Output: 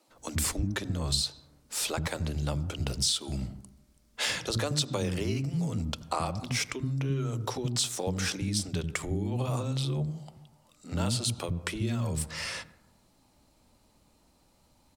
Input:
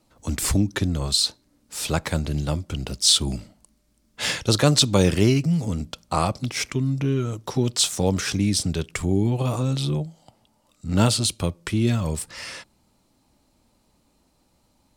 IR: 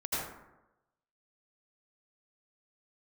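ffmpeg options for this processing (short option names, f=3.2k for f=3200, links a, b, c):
-filter_complex "[0:a]asplit=2[a][b];[b]lowpass=6.6k[c];[1:a]atrim=start_sample=2205,highshelf=f=5.3k:g=-10.5[d];[c][d]afir=irnorm=-1:irlink=0,volume=-24dB[e];[a][e]amix=inputs=2:normalize=0,acompressor=threshold=-27dB:ratio=4,acrossover=split=270[f][g];[f]adelay=80[h];[h][g]amix=inputs=2:normalize=0"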